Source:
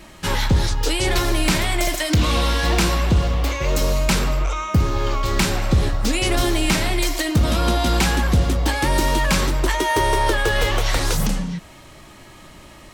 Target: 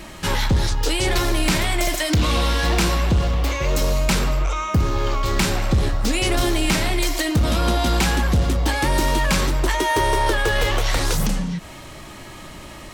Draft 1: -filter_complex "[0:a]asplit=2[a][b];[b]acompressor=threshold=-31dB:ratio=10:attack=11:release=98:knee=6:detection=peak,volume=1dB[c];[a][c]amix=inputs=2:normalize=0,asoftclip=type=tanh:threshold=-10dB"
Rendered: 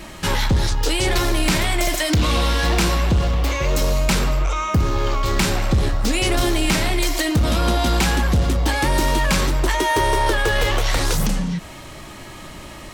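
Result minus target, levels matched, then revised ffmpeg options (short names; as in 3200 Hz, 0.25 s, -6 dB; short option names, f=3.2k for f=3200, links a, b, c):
compressor: peak gain reduction -9.5 dB
-filter_complex "[0:a]asplit=2[a][b];[b]acompressor=threshold=-41.5dB:ratio=10:attack=11:release=98:knee=6:detection=peak,volume=1dB[c];[a][c]amix=inputs=2:normalize=0,asoftclip=type=tanh:threshold=-10dB"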